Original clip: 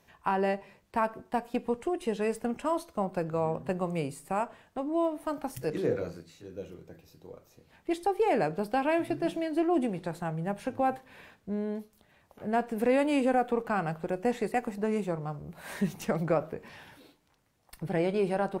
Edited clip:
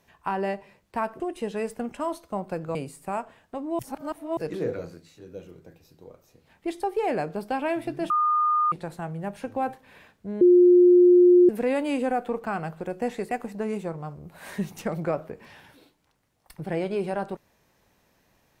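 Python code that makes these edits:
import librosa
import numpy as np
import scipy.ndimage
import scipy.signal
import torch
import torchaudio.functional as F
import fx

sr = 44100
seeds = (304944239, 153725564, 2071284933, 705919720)

y = fx.edit(x, sr, fx.cut(start_s=1.2, length_s=0.65),
    fx.cut(start_s=3.4, length_s=0.58),
    fx.reverse_span(start_s=5.02, length_s=0.58),
    fx.bleep(start_s=9.33, length_s=0.62, hz=1220.0, db=-19.0),
    fx.bleep(start_s=11.64, length_s=1.08, hz=356.0, db=-11.5), tone=tone)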